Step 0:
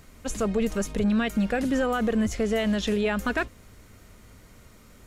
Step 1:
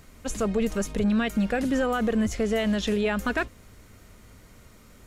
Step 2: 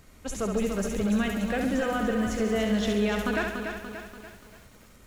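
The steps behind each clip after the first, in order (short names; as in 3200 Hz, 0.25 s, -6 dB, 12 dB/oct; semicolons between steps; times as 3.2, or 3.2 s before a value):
nothing audible
thinning echo 68 ms, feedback 52%, high-pass 210 Hz, level -5 dB; lo-fi delay 0.29 s, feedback 55%, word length 8-bit, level -6.5 dB; gain -3.5 dB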